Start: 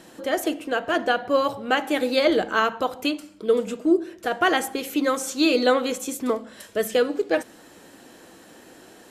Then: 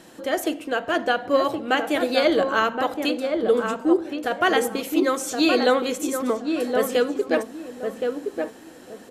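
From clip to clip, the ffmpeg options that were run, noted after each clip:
-filter_complex "[0:a]asplit=2[a][b];[b]adelay=1070,lowpass=f=1.2k:p=1,volume=-4dB,asplit=2[c][d];[d]adelay=1070,lowpass=f=1.2k:p=1,volume=0.27,asplit=2[e][f];[f]adelay=1070,lowpass=f=1.2k:p=1,volume=0.27,asplit=2[g][h];[h]adelay=1070,lowpass=f=1.2k:p=1,volume=0.27[i];[a][c][e][g][i]amix=inputs=5:normalize=0"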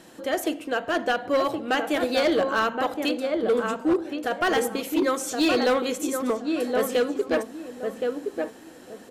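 -af "asoftclip=type=hard:threshold=-15dB,volume=-1.5dB"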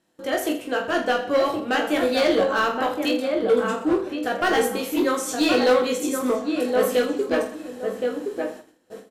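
-filter_complex "[0:a]agate=range=-22dB:threshold=-41dB:ratio=16:detection=peak,asplit=2[a][b];[b]aecho=0:1:20|46|79.8|123.7|180.9:0.631|0.398|0.251|0.158|0.1[c];[a][c]amix=inputs=2:normalize=0"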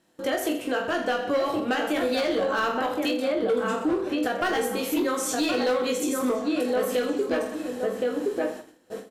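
-af "alimiter=limit=-20.5dB:level=0:latency=1:release=183,volume=3.5dB"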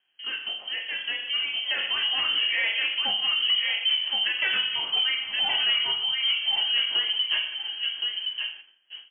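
-af "dynaudnorm=f=300:g=11:m=6dB,lowpass=f=2.9k:t=q:w=0.5098,lowpass=f=2.9k:t=q:w=0.6013,lowpass=f=2.9k:t=q:w=0.9,lowpass=f=2.9k:t=q:w=2.563,afreqshift=-3400,lowshelf=f=200:g=-6,volume=-6dB"

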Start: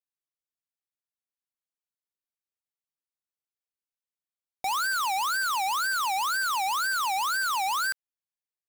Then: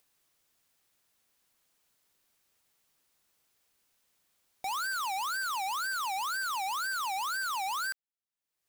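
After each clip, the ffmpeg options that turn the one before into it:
-af "acompressor=mode=upward:threshold=-46dB:ratio=2.5,volume=-6dB"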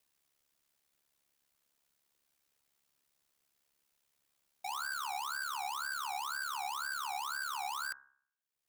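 -af "aeval=exprs='val(0)*sin(2*PI*35*n/s)':c=same,bandreject=f=67.53:t=h:w=4,bandreject=f=135.06:t=h:w=4,bandreject=f=202.59:t=h:w=4,bandreject=f=270.12:t=h:w=4,bandreject=f=337.65:t=h:w=4,bandreject=f=405.18:t=h:w=4,bandreject=f=472.71:t=h:w=4,bandreject=f=540.24:t=h:w=4,bandreject=f=607.77:t=h:w=4,bandreject=f=675.3:t=h:w=4,bandreject=f=742.83:t=h:w=4,bandreject=f=810.36:t=h:w=4,bandreject=f=877.89:t=h:w=4,bandreject=f=945.42:t=h:w=4,bandreject=f=1.01295k:t=h:w=4,bandreject=f=1.08048k:t=h:w=4,bandreject=f=1.14801k:t=h:w=4,bandreject=f=1.21554k:t=h:w=4,bandreject=f=1.28307k:t=h:w=4,bandreject=f=1.3506k:t=h:w=4,bandreject=f=1.41813k:t=h:w=4,bandreject=f=1.48566k:t=h:w=4,bandreject=f=1.55319k:t=h:w=4,bandreject=f=1.62072k:t=h:w=4,bandreject=f=1.68825k:t=h:w=4,bandreject=f=1.75578k:t=h:w=4,bandreject=f=1.82331k:t=h:w=4,bandreject=f=1.89084k:t=h:w=4,volume=-2dB"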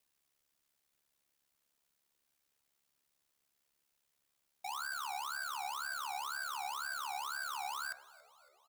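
-filter_complex "[0:a]asplit=6[a][b][c][d][e][f];[b]adelay=279,afreqshift=-73,volume=-21dB[g];[c]adelay=558,afreqshift=-146,volume=-25.7dB[h];[d]adelay=837,afreqshift=-219,volume=-30.5dB[i];[e]adelay=1116,afreqshift=-292,volume=-35.2dB[j];[f]adelay=1395,afreqshift=-365,volume=-39.9dB[k];[a][g][h][i][j][k]amix=inputs=6:normalize=0,volume=-2dB"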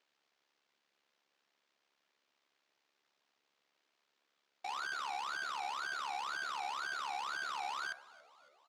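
-af "acrusher=samples=4:mix=1:aa=0.000001,highpass=290,lowpass=5.2k,volume=1dB"

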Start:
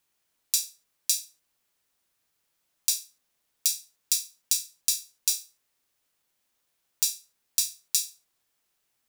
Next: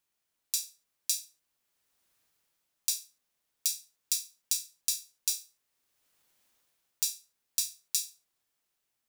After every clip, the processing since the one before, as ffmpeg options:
-af "dynaudnorm=f=270:g=5:m=13dB,volume=-6.5dB"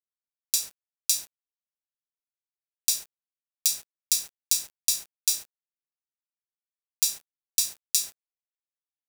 -af "acrusher=bits=7:mix=0:aa=0.000001,volume=6dB"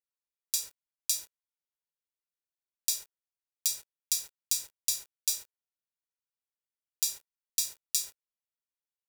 -af "aecho=1:1:2.1:0.47,volume=-6dB"

